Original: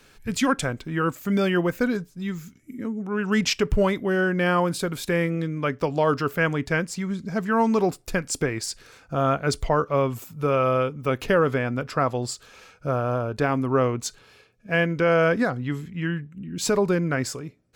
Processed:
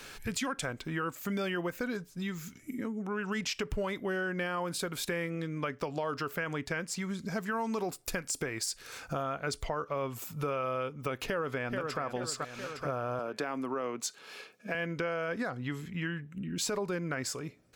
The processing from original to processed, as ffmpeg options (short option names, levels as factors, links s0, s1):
-filter_complex "[0:a]asettb=1/sr,asplit=3[s0][s1][s2];[s0]atrim=end=7.024[s3];[s1]atrim=start=7.02:end=9.23,asetpts=PTS-STARTPTS,afade=t=in:d=0.004:c=qsin,afade=t=out:st=2.206:d=0.004:c=qsin,highshelf=f=8700:g=7.5[s4];[s2]atrim=start=9.226[s5];[s3][s4]acrossfade=d=0.004:c1=hsin:c2=qsin[s6];[s6][s5]acrossfade=d=0.004:c1=qsin:c2=hsin,asplit=2[s7][s8];[s8]afade=t=in:st=11.26:d=0.01,afade=t=out:st=12.01:d=0.01,aecho=0:1:430|860|1290|1720:0.354813|0.141925|0.0567701|0.0227081[s9];[s7][s9]amix=inputs=2:normalize=0,asettb=1/sr,asplit=3[s10][s11][s12];[s10]atrim=end=13.194[s13];[s11]atrim=start=13.19:end=14.75,asetpts=PTS-STARTPTS,afade=t=in:d=0.004:c=qsin,afade=t=out:st=1.556:d=0.004:c=qsin,highpass=f=180:w=0.5412,highpass=f=180:w=1.3066[s14];[s12]atrim=start=14.746[s15];[s13][s14]acrossfade=d=0.004:c1=hsin:c2=qsin[s16];[s16][s15]acrossfade=d=0.004:c1=qsin:c2=hsin,lowshelf=f=420:g=-7.5,alimiter=limit=0.133:level=0:latency=1,acompressor=threshold=0.00562:ratio=3,volume=2.66"